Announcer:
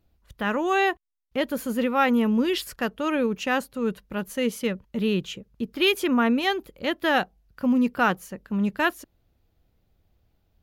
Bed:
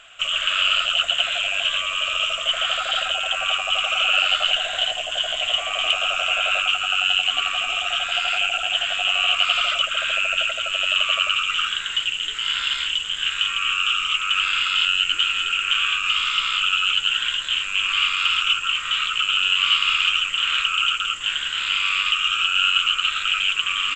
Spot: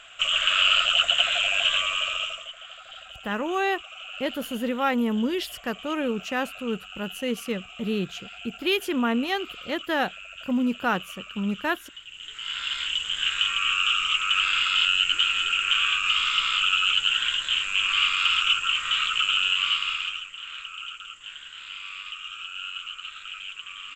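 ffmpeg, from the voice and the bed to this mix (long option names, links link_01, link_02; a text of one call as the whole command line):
ffmpeg -i stem1.wav -i stem2.wav -filter_complex "[0:a]adelay=2850,volume=-3dB[link_01];[1:a]volume=18dB,afade=type=out:start_time=1.81:duration=0.71:silence=0.1,afade=type=in:start_time=12.07:duration=1.11:silence=0.11885,afade=type=out:start_time=19.24:duration=1.05:silence=0.188365[link_02];[link_01][link_02]amix=inputs=2:normalize=0" out.wav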